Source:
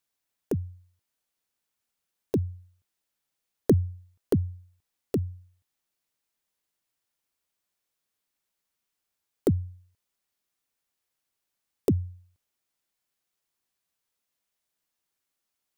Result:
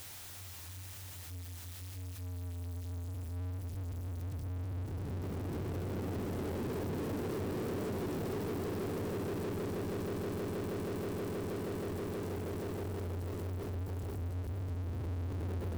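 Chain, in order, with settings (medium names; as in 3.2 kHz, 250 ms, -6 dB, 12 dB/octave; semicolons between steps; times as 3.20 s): reverse the whole clip; slow attack 279 ms; Paulstretch 12×, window 0.50 s, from 10.00 s; echo with a slow build-up 159 ms, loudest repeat 8, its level -13.5 dB; power-law waveshaper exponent 0.35; compression 2.5:1, threshold -35 dBFS, peak gain reduction 4.5 dB; trim -2 dB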